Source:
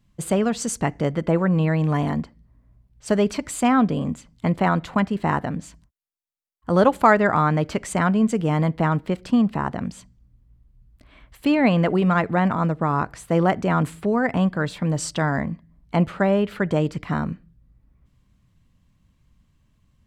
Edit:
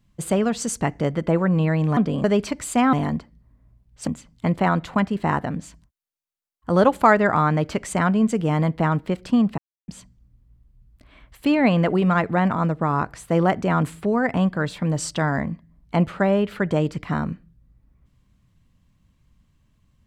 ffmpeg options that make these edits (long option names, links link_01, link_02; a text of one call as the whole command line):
ffmpeg -i in.wav -filter_complex "[0:a]asplit=7[link_01][link_02][link_03][link_04][link_05][link_06][link_07];[link_01]atrim=end=1.972[link_08];[link_02]atrim=start=3.798:end=4.072[link_09];[link_03]atrim=start=3.108:end=3.802[link_10];[link_04]atrim=start=1.968:end=3.112[link_11];[link_05]atrim=start=4.068:end=9.58,asetpts=PTS-STARTPTS,afade=type=out:start_time=5.508:duration=0.004:curve=hsin[link_12];[link_06]atrim=start=9.58:end=9.88,asetpts=PTS-STARTPTS,volume=0[link_13];[link_07]atrim=start=9.88,asetpts=PTS-STARTPTS,afade=type=in:duration=0.004:curve=hsin[link_14];[link_08][link_09]acrossfade=duration=0.004:curve1=hsin:curve2=hsin[link_15];[link_15][link_10]acrossfade=duration=0.004:curve1=hsin:curve2=hsin[link_16];[link_16][link_11]acrossfade=duration=0.004:curve1=hsin:curve2=hsin[link_17];[link_12][link_13][link_14]concat=n=3:v=0:a=1[link_18];[link_17][link_18]acrossfade=duration=0.004:curve1=hsin:curve2=hsin" out.wav